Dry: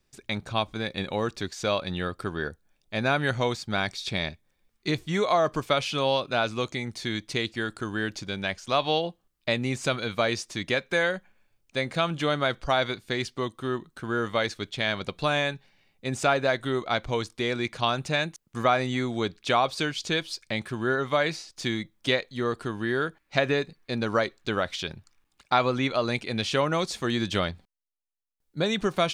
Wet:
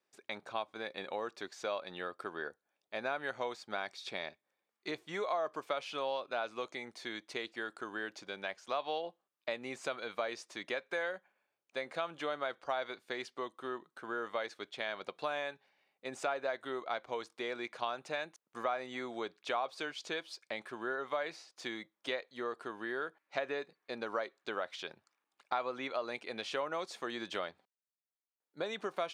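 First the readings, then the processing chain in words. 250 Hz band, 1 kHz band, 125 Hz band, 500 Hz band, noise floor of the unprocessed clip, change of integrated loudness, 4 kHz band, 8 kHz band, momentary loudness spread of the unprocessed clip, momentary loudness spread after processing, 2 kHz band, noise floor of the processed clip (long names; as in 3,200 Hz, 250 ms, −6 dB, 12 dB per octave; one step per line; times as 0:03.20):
−16.5 dB, −10.5 dB, −27.5 dB, −10.5 dB, −74 dBFS, −12.0 dB, −14.0 dB, −14.0 dB, 7 LU, 6 LU, −11.0 dB, below −85 dBFS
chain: high-pass filter 530 Hz 12 dB per octave
high-shelf EQ 2,100 Hz −12 dB
downward compressor 2 to 1, threshold −34 dBFS, peak gain reduction 8 dB
level −2 dB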